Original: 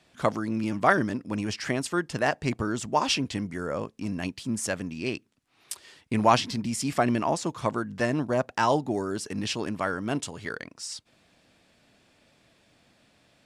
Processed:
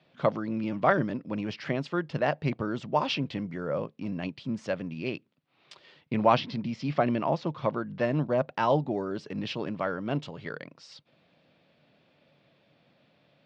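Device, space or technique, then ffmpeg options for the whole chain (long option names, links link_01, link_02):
guitar cabinet: -filter_complex "[0:a]highpass=110,equalizer=frequency=150:width_type=q:width=4:gain=9,equalizer=frequency=550:width_type=q:width=4:gain=6,equalizer=frequency=1700:width_type=q:width=4:gain=-3,lowpass=frequency=4100:width=0.5412,lowpass=frequency=4100:width=1.3066,asettb=1/sr,asplit=3[link_01][link_02][link_03];[link_01]atrim=end=6.174[link_04];[link_02]atrim=start=6.17:end=8.03,asetpts=PTS-STARTPTS,afade=type=in:duration=0.004:curve=qsin,afade=type=out:start_time=1.856:duration=0.004:curve=qsin,lowpass=frequency=6200:width=0.5412,lowpass=frequency=6200:width=1.3066[link_05];[link_03]atrim=start=8.026[link_06];[link_04][link_05]acrossfade=duration=0.004:curve1=hsin:curve2=qsin[link_07];[link_07][link_06]acrossfade=duration=0.004:curve1=qsin:curve2=hsin,volume=-3dB"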